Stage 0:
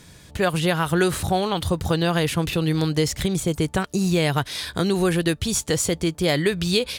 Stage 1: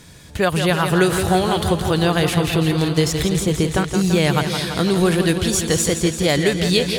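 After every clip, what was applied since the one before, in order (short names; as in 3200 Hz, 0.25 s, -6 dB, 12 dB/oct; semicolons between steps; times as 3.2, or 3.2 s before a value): warbling echo 0.168 s, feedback 72%, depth 54 cents, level -8 dB; gain +3 dB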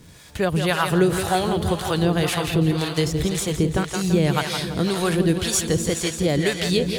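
harmonic tremolo 1.9 Hz, depth 70%, crossover 560 Hz; crackle 480/s -43 dBFS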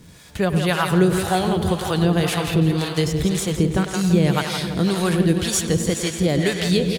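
bell 190 Hz +4.5 dB 0.46 oct; speakerphone echo 0.1 s, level -10 dB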